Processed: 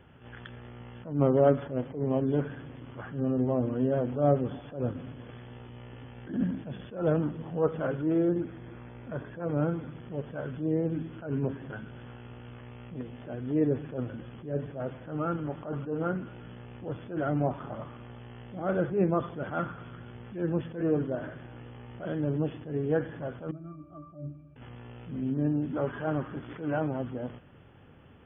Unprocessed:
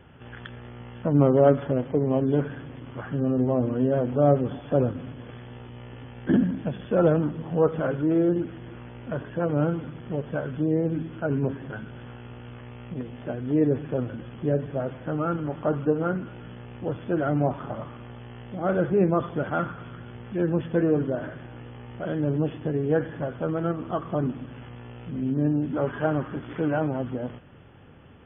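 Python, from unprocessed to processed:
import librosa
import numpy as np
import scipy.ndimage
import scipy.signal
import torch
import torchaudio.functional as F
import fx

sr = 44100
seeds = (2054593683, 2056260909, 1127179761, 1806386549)

y = fx.notch(x, sr, hz=2900.0, q=7.7, at=(8.25, 9.9))
y = fx.octave_resonator(y, sr, note='D', decay_s=0.21, at=(23.51, 24.56))
y = fx.attack_slew(y, sr, db_per_s=130.0)
y = y * librosa.db_to_amplitude(-4.0)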